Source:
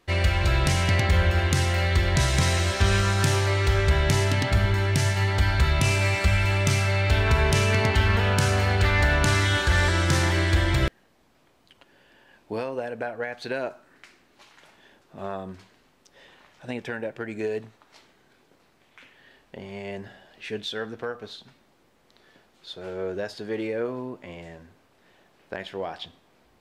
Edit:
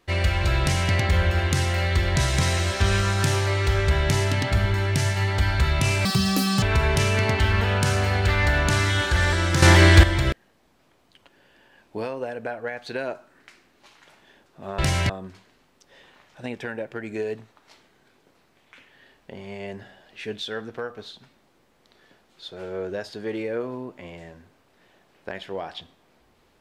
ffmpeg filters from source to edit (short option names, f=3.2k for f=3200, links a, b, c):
-filter_complex "[0:a]asplit=7[a][b][c][d][e][f][g];[a]atrim=end=6.054[h];[b]atrim=start=6.05:end=7.18,asetpts=PTS-STARTPTS,asetrate=86877,aresample=44100[i];[c]atrim=start=7.176:end=10.182[j];[d]atrim=start=10.178:end=10.592,asetpts=PTS-STARTPTS,volume=9.5dB[k];[e]atrim=start=10.588:end=15.342[l];[f]atrim=start=0.608:end=0.922[m];[g]atrim=start=15.338[n];[h][i]acrossfade=d=0.004:c1=hsin:c2=hsin[o];[o][j]acrossfade=d=0.004:c1=hsin:c2=hsin[p];[p][k]acrossfade=d=0.004:c1=hsin:c2=hsin[q];[q][l]acrossfade=d=0.004:c1=hsin:c2=hsin[r];[r][m]acrossfade=d=0.004:c1=hsin:c2=hsin[s];[s][n]acrossfade=d=0.004:c1=hsin:c2=hsin"